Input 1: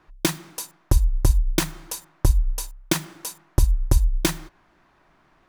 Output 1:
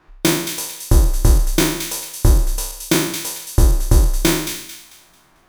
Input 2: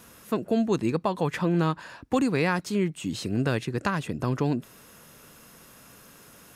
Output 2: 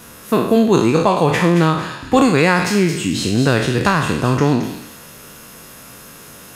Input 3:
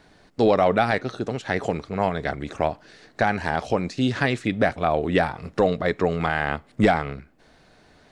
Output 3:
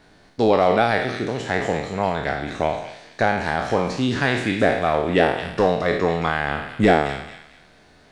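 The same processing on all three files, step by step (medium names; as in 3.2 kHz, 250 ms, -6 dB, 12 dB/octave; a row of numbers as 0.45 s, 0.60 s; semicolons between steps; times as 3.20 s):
spectral sustain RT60 0.75 s; feedback echo behind a high-pass 222 ms, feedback 33%, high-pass 2.3 kHz, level -6 dB; peak normalisation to -1.5 dBFS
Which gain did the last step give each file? +3.0 dB, +9.5 dB, -0.5 dB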